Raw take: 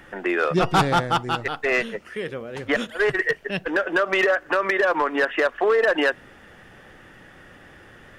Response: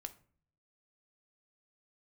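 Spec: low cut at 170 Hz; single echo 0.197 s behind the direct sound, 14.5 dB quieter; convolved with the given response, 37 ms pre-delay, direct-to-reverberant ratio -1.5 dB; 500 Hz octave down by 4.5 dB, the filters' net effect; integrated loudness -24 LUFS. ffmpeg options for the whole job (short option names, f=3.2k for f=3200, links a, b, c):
-filter_complex "[0:a]highpass=170,equalizer=f=500:t=o:g=-5.5,aecho=1:1:197:0.188,asplit=2[a][b];[1:a]atrim=start_sample=2205,adelay=37[c];[b][c]afir=irnorm=-1:irlink=0,volume=5.5dB[d];[a][d]amix=inputs=2:normalize=0,volume=-4dB"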